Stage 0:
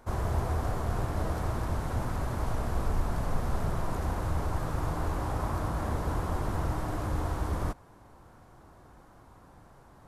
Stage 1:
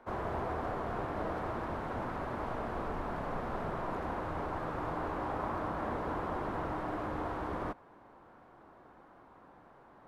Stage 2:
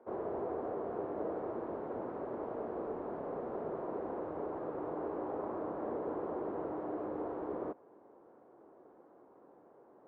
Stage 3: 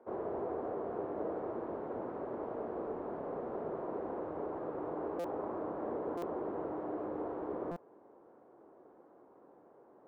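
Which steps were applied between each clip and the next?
three-band isolator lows -15 dB, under 200 Hz, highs -20 dB, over 3300 Hz
band-pass 420 Hz, Q 2; gain +4 dB
stuck buffer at 5.19/6.17/7.71, samples 256, times 8

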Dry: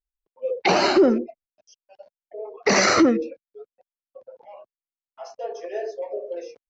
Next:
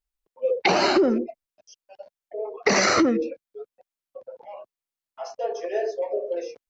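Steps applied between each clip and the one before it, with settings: compressor 5:1, threshold -20 dBFS, peak gain reduction 8 dB; gain +3.5 dB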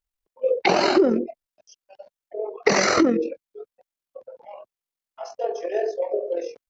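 dynamic EQ 430 Hz, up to +3 dB, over -32 dBFS, Q 0.8; AM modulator 43 Hz, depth 35%; gain +1.5 dB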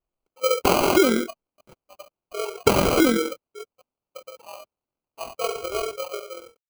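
ending faded out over 1.31 s; sample-rate reducer 1800 Hz, jitter 0%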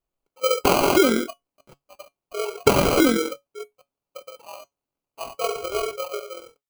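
resonator 140 Hz, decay 0.15 s, harmonics all, mix 50%; gain +4.5 dB

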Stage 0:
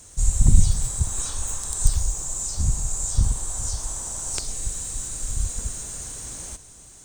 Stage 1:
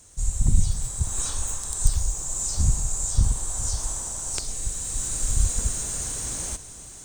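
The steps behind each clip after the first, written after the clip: AGC gain up to 10 dB; gain -5 dB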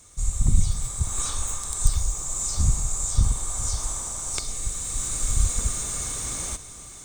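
small resonant body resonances 1200/2200/3600 Hz, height 12 dB, ringing for 40 ms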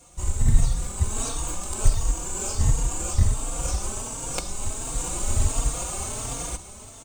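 in parallel at -4.5 dB: sample-and-hold 23×; on the sum: endless flanger 3.8 ms +1.4 Hz

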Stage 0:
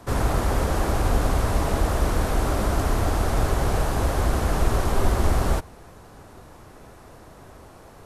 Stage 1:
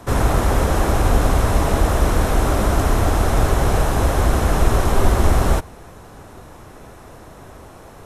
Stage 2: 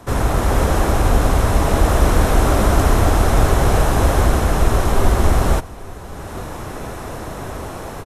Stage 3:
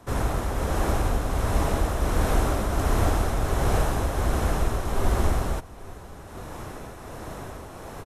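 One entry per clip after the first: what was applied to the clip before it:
notch 4600 Hz, Q 12; gain +5.5 dB
AGC gain up to 12.5 dB; echo 0.848 s -20.5 dB; gain -1 dB
tremolo triangle 1.4 Hz, depth 45%; gain -7 dB

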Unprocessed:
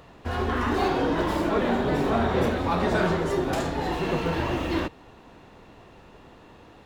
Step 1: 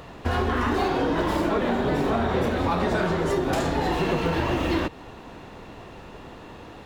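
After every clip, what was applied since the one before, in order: compressor, threshold -28 dBFS, peak gain reduction 9 dB; gain +7.5 dB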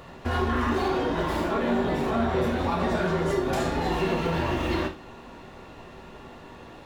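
non-linear reverb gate 0.12 s falling, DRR 2 dB; gain -4 dB

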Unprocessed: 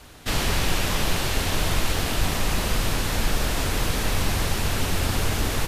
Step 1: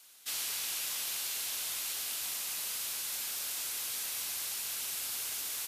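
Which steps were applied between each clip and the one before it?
differentiator; notch 1800 Hz, Q 21; gain -4 dB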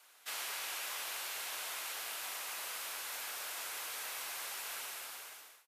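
ending faded out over 0.91 s; three-band isolator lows -18 dB, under 410 Hz, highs -13 dB, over 2200 Hz; gain +5.5 dB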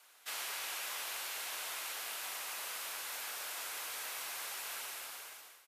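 feedback echo 0.311 s, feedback 59%, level -20 dB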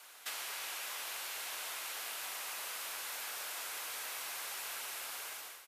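compressor 6:1, threshold -47 dBFS, peak gain reduction 9 dB; gain +7.5 dB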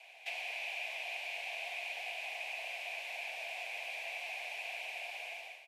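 frequency shift +46 Hz; double band-pass 1300 Hz, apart 1.8 oct; gain +11.5 dB

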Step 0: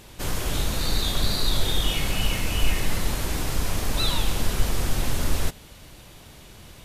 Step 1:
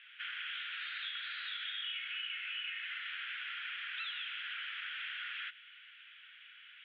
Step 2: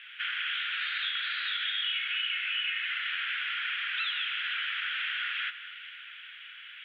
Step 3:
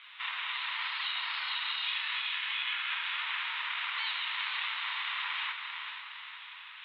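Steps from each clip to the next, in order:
Chebyshev band-pass 1400–3300 Hz, order 4; compressor, threshold -38 dBFS, peak gain reduction 9 dB
echo with dull and thin repeats by turns 0.232 s, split 2100 Hz, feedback 66%, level -12 dB; gain +9 dB
chorus voices 4, 0.47 Hz, delay 28 ms, depth 2.4 ms; diffused feedback echo 0.457 s, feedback 44%, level -6 dB; ring modulator 440 Hz; gain +2.5 dB

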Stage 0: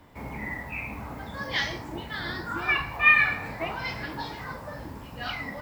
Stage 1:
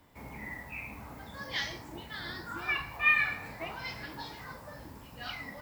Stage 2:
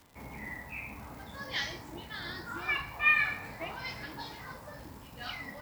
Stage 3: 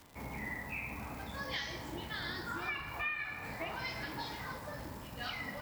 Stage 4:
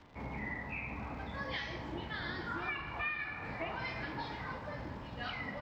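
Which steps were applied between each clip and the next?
high shelf 4000 Hz +8 dB; gain -8.5 dB
crackle 150/s -44 dBFS
compressor 6:1, threshold -38 dBFS, peak gain reduction 17 dB; reverb RT60 3.3 s, pre-delay 5 ms, DRR 10 dB; gain +2 dB
air absorption 210 m; echo 0.868 s -15.5 dB; gain +2 dB

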